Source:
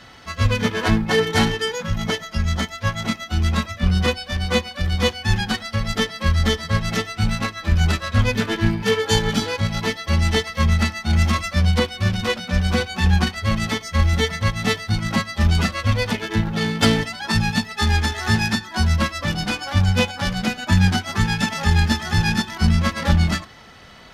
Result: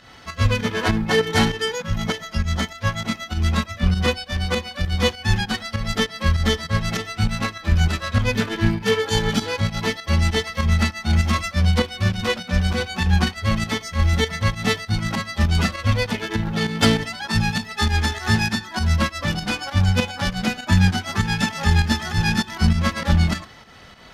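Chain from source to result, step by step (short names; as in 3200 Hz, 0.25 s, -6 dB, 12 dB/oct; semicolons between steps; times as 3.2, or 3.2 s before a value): pump 99 bpm, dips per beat 2, -9 dB, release 0.148 s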